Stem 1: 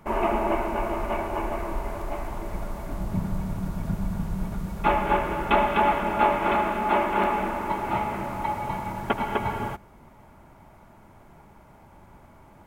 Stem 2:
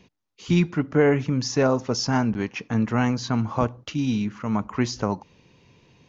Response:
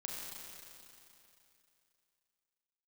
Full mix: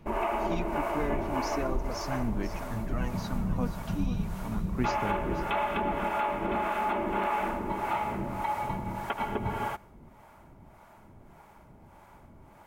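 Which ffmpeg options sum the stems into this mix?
-filter_complex "[0:a]acrossover=split=490[a][b];[a]aeval=exprs='val(0)*(1-0.7/2+0.7/2*cos(2*PI*1.7*n/s))':c=same[c];[b]aeval=exprs='val(0)*(1-0.7/2-0.7/2*cos(2*PI*1.7*n/s))':c=same[d];[c][d]amix=inputs=2:normalize=0,alimiter=limit=-21dB:level=0:latency=1:release=148,volume=1dB[e];[1:a]aphaser=in_gain=1:out_gain=1:delay=4.1:decay=0.58:speed=0.41:type=sinusoidal,volume=-15dB,asplit=2[f][g];[g]volume=-12dB,aecho=0:1:485:1[h];[e][f][h]amix=inputs=3:normalize=0"

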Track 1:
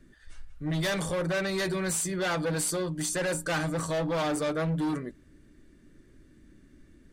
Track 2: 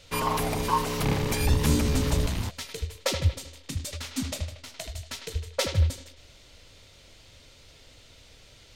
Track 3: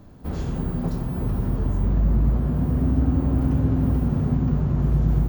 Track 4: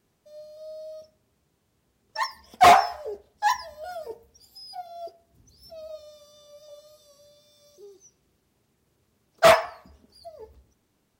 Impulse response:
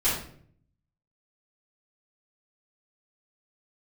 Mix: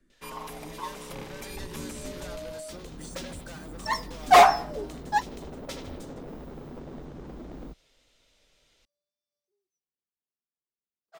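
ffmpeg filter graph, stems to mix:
-filter_complex "[0:a]acrossover=split=210|5100[a][b][c];[a]acompressor=threshold=-47dB:ratio=4[d];[b]acompressor=threshold=-35dB:ratio=4[e];[c]acompressor=threshold=-39dB:ratio=4[f];[d][e][f]amix=inputs=3:normalize=0,volume=-9.5dB,asplit=2[g][h];[1:a]bandreject=f=4.4k:w=21,adelay=100,volume=-12dB[i];[2:a]aeval=exprs='0.1*(abs(mod(val(0)/0.1+3,4)-2)-1)':c=same,adelay=2450,volume=-13dB[j];[3:a]adelay=1700,volume=-0.5dB[k];[h]apad=whole_len=573025[l];[k][l]sidechaingate=range=-35dB:threshold=-57dB:ratio=16:detection=peak[m];[g][i][j][m]amix=inputs=4:normalize=0,equalizer=f=89:t=o:w=1:g=-14.5"

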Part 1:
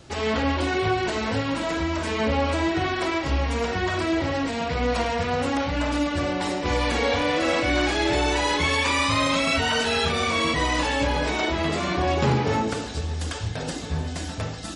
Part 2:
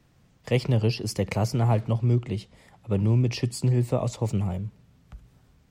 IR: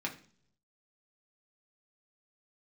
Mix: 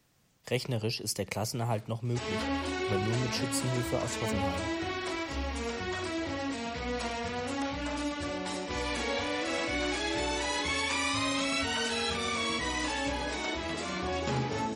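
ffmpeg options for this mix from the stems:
-filter_complex "[0:a]adelay=2050,volume=-12.5dB,asplit=2[a][b];[b]volume=-10.5dB[c];[1:a]lowshelf=f=210:g=-8.5,volume=-5dB[d];[2:a]atrim=start_sample=2205[e];[c][e]afir=irnorm=-1:irlink=0[f];[a][d][f]amix=inputs=3:normalize=0,highshelf=f=4.7k:g=10"

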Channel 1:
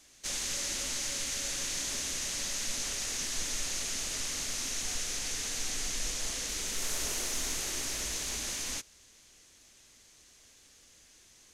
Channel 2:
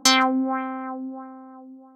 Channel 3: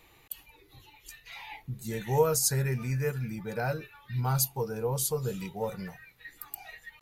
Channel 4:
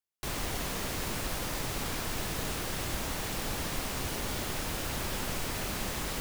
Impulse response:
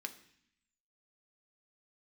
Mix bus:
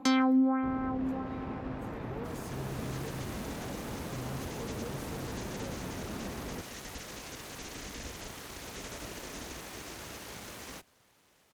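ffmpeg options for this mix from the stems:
-filter_complex "[0:a]highshelf=f=6.3k:g=-7.5,dynaudnorm=f=200:g=7:m=9dB,aeval=exprs='abs(val(0))':c=same,adelay=2000,volume=-4dB[a];[1:a]equalizer=f=2.3k:w=0.41:g=6.5,volume=-1.5dB,asplit=2[b][c];[c]volume=-11.5dB[d];[2:a]asoftclip=type=tanh:threshold=-30.5dB,volume=-7.5dB[e];[3:a]adynamicsmooth=sensitivity=1.5:basefreq=1.4k,adelay=400,volume=-2dB,asplit=2[f][g];[g]volume=-4dB[h];[4:a]atrim=start_sample=2205[i];[d][h]amix=inputs=2:normalize=0[j];[j][i]afir=irnorm=-1:irlink=0[k];[a][b][e][f][k]amix=inputs=5:normalize=0,highpass=56,highshelf=f=2.4k:g=-10,acrossover=split=430[l][m];[m]acompressor=threshold=-44dB:ratio=2[n];[l][n]amix=inputs=2:normalize=0"

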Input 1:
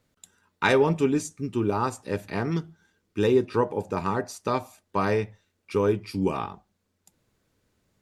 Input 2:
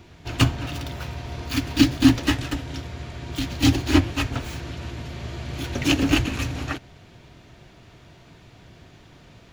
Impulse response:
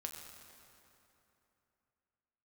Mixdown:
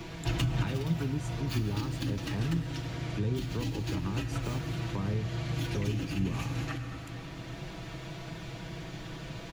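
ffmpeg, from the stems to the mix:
-filter_complex "[0:a]acrossover=split=230[a][b];[b]acompressor=threshold=-35dB:ratio=6[c];[a][c]amix=inputs=2:normalize=0,volume=0.5dB,asplit=2[d][e];[1:a]aecho=1:1:6.1:0.98,alimiter=limit=-11.5dB:level=0:latency=1:release=105,acompressor=threshold=-26dB:ratio=6,volume=2.5dB,asplit=2[f][g];[g]volume=-4dB[h];[e]apad=whole_len=420213[i];[f][i]sidechaincompress=threshold=-42dB:ratio=8:attack=33:release=1050[j];[2:a]atrim=start_sample=2205[k];[h][k]afir=irnorm=-1:irlink=0[l];[d][j][l]amix=inputs=3:normalize=0,acrossover=split=180[m][n];[n]acompressor=threshold=-41dB:ratio=2[o];[m][o]amix=inputs=2:normalize=0"

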